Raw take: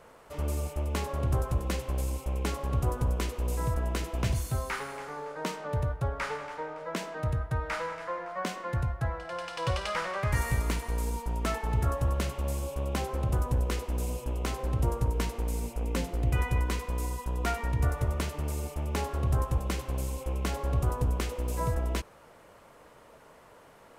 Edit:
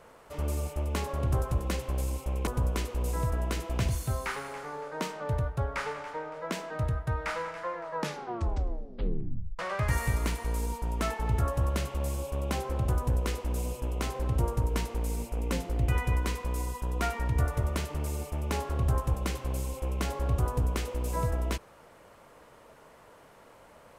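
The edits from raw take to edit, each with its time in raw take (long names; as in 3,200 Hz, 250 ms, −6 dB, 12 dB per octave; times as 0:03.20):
0:02.47–0:02.91: remove
0:08.19: tape stop 1.84 s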